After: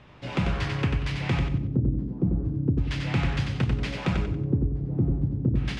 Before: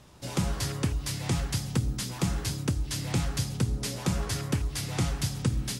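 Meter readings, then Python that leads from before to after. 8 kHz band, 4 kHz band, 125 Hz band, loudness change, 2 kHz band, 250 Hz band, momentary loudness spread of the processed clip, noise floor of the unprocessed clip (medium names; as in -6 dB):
under -15 dB, -3.0 dB, +4.0 dB, +3.5 dB, +4.5 dB, +5.0 dB, 2 LU, -39 dBFS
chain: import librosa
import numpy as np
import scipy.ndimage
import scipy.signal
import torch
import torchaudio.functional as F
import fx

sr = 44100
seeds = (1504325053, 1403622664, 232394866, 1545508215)

p1 = (np.mod(10.0 ** (17.5 / 20.0) * x + 1.0, 2.0) - 1.0) / 10.0 ** (17.5 / 20.0)
p2 = x + (p1 * librosa.db_to_amplitude(-11.0))
p3 = fx.filter_lfo_lowpass(p2, sr, shape='square', hz=0.36, low_hz=330.0, high_hz=2500.0, q=1.7)
y = fx.echo_feedback(p3, sr, ms=93, feedback_pct=32, wet_db=-4.5)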